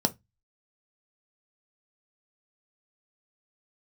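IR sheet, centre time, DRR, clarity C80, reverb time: 4 ms, 7.0 dB, 35.5 dB, 0.15 s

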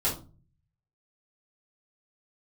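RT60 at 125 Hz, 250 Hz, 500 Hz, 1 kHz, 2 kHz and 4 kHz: 0.95, 0.60, 0.40, 0.30, 0.25, 0.25 s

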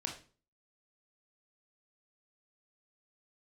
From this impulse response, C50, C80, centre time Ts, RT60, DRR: 7.5 dB, 13.5 dB, 22 ms, 0.40 s, 0.5 dB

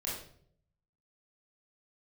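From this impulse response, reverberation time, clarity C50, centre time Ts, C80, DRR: 0.60 s, 2.5 dB, 47 ms, 7.0 dB, -7.0 dB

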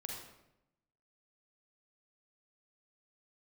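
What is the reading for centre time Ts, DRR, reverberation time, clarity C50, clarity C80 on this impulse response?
54 ms, -1.0 dB, 0.85 s, 1.0 dB, 4.5 dB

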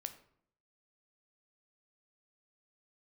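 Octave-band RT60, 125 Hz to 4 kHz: 0.80, 0.75, 0.65, 0.60, 0.50, 0.40 s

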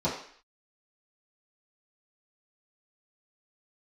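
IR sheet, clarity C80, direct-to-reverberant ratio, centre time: 9.0 dB, -11.0 dB, 35 ms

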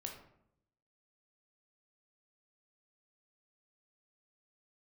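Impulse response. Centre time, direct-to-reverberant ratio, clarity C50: 26 ms, 1.5 dB, 6.0 dB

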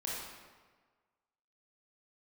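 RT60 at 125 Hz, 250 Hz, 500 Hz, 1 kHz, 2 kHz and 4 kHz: 1.4, 1.4, 1.5, 1.5, 1.3, 1.0 s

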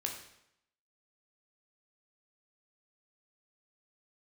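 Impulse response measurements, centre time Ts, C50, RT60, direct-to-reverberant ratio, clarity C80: 27 ms, 6.0 dB, 0.80 s, 1.0 dB, 8.5 dB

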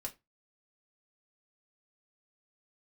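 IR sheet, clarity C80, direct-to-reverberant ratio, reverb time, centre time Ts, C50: 26.5 dB, -0.5 dB, 0.20 s, 7 ms, 19.5 dB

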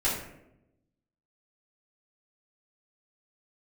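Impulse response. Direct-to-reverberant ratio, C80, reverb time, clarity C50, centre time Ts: -10.5 dB, 6.5 dB, 0.85 s, 3.5 dB, 46 ms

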